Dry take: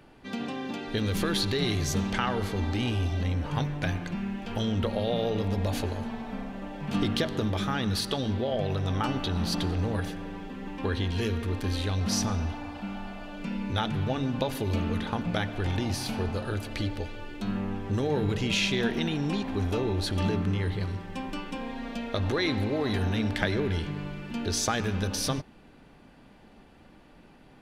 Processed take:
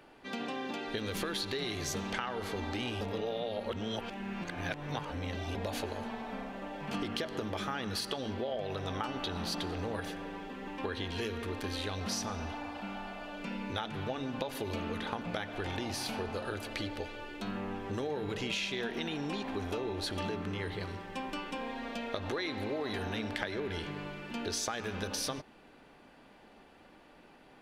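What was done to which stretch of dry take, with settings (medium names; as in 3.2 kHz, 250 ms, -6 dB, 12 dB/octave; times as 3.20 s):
3.01–5.55 s: reverse
6.89–8.44 s: band-stop 3.7 kHz, Q 11
whole clip: tone controls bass -11 dB, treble -2 dB; compression, threshold -32 dBFS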